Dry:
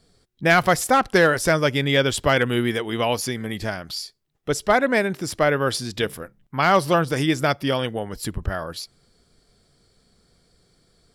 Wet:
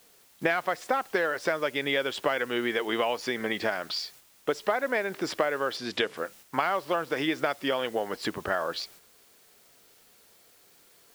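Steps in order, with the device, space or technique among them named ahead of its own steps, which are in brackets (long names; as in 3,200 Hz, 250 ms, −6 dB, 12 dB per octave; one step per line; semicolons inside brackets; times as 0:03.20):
baby monitor (band-pass filter 390–3,200 Hz; downward compressor 10 to 1, threshold −30 dBFS, peak gain reduction 18 dB; white noise bed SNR 23 dB; noise gate −56 dBFS, range −6 dB)
0:05.77–0:06.17: low-pass filter 10,000 Hz 12 dB per octave
level +6.5 dB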